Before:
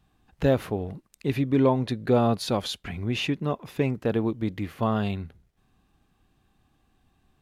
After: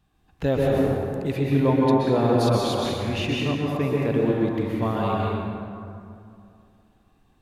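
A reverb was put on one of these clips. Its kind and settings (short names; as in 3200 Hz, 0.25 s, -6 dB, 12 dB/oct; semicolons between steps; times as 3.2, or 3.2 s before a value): plate-style reverb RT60 2.5 s, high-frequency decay 0.5×, pre-delay 0.11 s, DRR -4 dB; gain -2 dB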